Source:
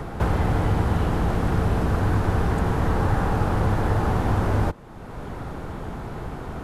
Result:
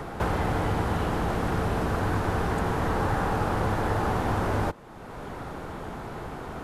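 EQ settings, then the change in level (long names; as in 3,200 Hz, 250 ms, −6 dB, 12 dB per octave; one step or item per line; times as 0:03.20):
low-shelf EQ 210 Hz −8.5 dB
0.0 dB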